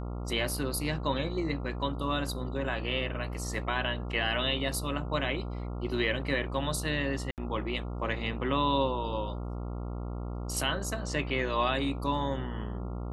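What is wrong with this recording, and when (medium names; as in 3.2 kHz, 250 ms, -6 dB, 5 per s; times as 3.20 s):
buzz 60 Hz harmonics 23 -36 dBFS
7.31–7.38 s: dropout 68 ms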